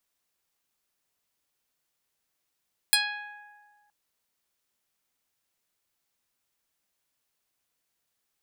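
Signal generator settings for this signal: plucked string G#5, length 0.97 s, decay 1.81 s, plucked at 0.13, medium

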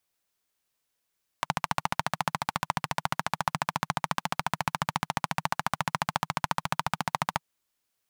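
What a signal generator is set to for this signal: single-cylinder engine model, steady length 5.99 s, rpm 1700, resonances 160/910 Hz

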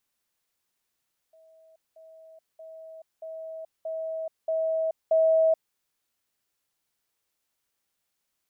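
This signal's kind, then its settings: level ladder 644 Hz -53.5 dBFS, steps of 6 dB, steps 7, 0.43 s 0.20 s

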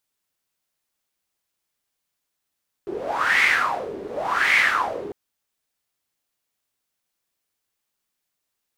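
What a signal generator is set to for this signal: wind-like swept noise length 2.25 s, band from 380 Hz, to 2100 Hz, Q 6.9, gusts 2, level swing 14 dB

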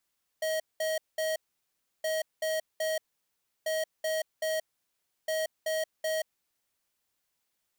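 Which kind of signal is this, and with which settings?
beep pattern square 633 Hz, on 0.18 s, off 0.20 s, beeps 3, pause 0.68 s, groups 4, -30 dBFS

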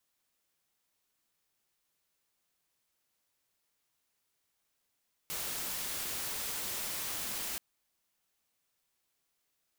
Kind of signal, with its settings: noise white, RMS -37.5 dBFS 2.28 s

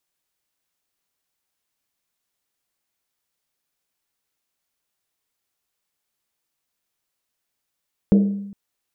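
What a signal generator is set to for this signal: Risset drum length 0.41 s, pitch 200 Hz, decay 0.96 s, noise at 430 Hz, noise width 360 Hz, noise 10%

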